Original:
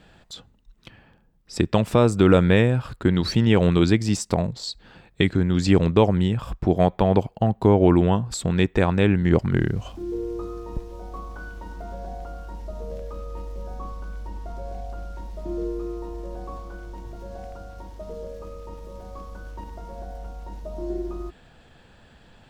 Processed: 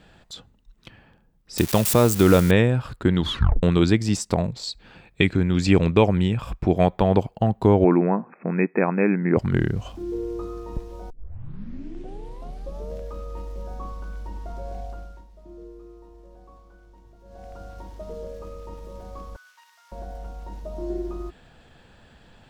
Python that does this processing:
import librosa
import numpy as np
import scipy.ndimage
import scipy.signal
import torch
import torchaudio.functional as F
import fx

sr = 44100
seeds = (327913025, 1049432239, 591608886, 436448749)

y = fx.crossing_spikes(x, sr, level_db=-16.5, at=(1.58, 2.51))
y = fx.peak_eq(y, sr, hz=2400.0, db=8.0, octaves=0.21, at=(4.45, 6.89))
y = fx.brickwall_bandpass(y, sr, low_hz=160.0, high_hz=2600.0, at=(7.84, 9.37))
y = fx.highpass(y, sr, hz=1400.0, slope=24, at=(19.36, 19.92))
y = fx.edit(y, sr, fx.tape_stop(start_s=3.2, length_s=0.43),
    fx.tape_start(start_s=11.1, length_s=1.81),
    fx.fade_down_up(start_s=14.84, length_s=2.81, db=-14.0, fade_s=0.42), tone=tone)